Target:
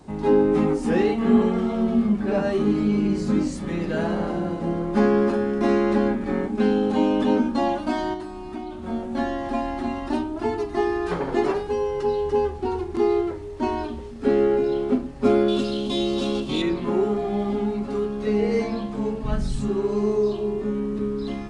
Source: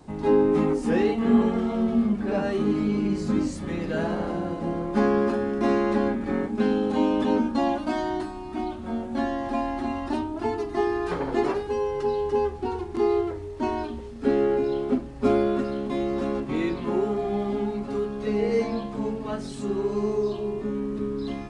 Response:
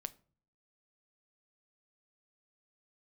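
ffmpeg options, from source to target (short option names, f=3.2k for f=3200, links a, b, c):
-filter_complex "[0:a]asettb=1/sr,asplit=3[a][b][c];[a]atrim=end=15.484[d];[b]atrim=start=15.48:end=16.62,asetpts=PTS-STARTPTS,afade=t=in:d=0.004:c=qsin,afade=t=out:st=1.136:d=0.004:c=qsin,highshelf=f=2.5k:t=q:w=3:g=9[e];[c]atrim=start=16.616[f];[d][e]acrossfade=d=0.004:c1=hsin:c2=qsin[g];[g][f]acrossfade=d=0.004:c1=qsin:c2=hsin[h];[1:a]atrim=start_sample=2205,asetrate=57330,aresample=44100[i];[h][i]afir=irnorm=-1:irlink=0,asettb=1/sr,asplit=3[j][k][l];[j]atrim=end=8.134[m];[k]atrim=start=8.13:end=8.83,asetpts=PTS-STARTPTS,afade=t=in:d=0.004:c=qsin,afade=t=out:st=0.696:d=0.004:c=qsin,acompressor=threshold=-37dB:ratio=6[n];[l]atrim=start=8.826[o];[m][n]acrossfade=d=0.004:c1=hsin:c2=qsin[p];[p][o]acrossfade=d=0.004:c1=qsin:c2=hsin,asplit=3[q][r][s];[q]afade=t=out:st=19.23:d=0.02[t];[r]asubboost=boost=9.5:cutoff=110,afade=t=in:st=19.23:d=0.02,afade=t=out:st=19.67:d=0.02[u];[s]afade=t=in:st=19.67:d=0.02[v];[t][u][v]amix=inputs=3:normalize=0,volume=7.5dB"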